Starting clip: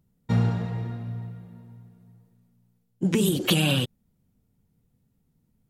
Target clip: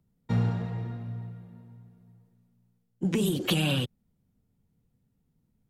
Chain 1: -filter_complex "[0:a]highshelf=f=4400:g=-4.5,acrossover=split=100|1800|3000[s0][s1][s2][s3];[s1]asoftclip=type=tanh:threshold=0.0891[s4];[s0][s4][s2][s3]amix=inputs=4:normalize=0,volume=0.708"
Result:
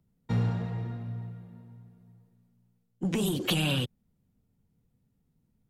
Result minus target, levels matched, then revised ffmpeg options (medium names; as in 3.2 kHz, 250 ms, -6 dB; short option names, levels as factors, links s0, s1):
saturation: distortion +11 dB
-filter_complex "[0:a]highshelf=f=4400:g=-4.5,acrossover=split=100|1800|3000[s0][s1][s2][s3];[s1]asoftclip=type=tanh:threshold=0.211[s4];[s0][s4][s2][s3]amix=inputs=4:normalize=0,volume=0.708"